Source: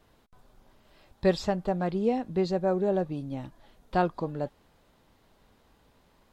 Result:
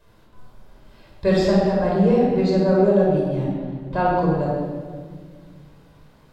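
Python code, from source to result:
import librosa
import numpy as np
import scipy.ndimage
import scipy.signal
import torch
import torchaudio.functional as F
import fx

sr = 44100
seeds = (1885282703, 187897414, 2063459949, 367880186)

y = fx.high_shelf(x, sr, hz=3700.0, db=-10.5, at=(3.44, 4.06))
y = fx.room_shoebox(y, sr, seeds[0], volume_m3=2300.0, walls='mixed', distance_m=5.2)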